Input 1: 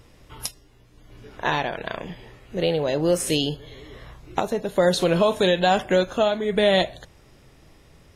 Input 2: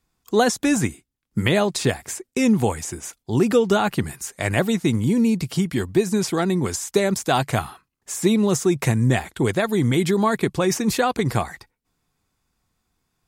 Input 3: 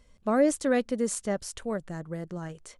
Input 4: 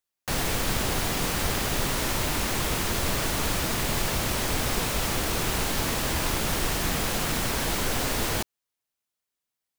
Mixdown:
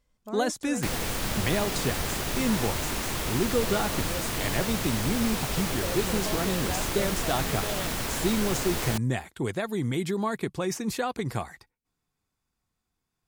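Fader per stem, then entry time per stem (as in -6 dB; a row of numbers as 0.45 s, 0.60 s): -17.5 dB, -9.0 dB, -13.5 dB, -3.5 dB; 1.05 s, 0.00 s, 0.00 s, 0.55 s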